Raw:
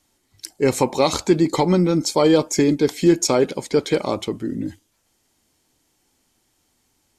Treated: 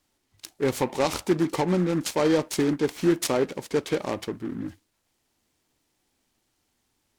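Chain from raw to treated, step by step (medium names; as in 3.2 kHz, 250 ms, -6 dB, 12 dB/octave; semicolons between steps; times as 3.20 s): delay time shaken by noise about 1.2 kHz, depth 0.05 ms; trim -6.5 dB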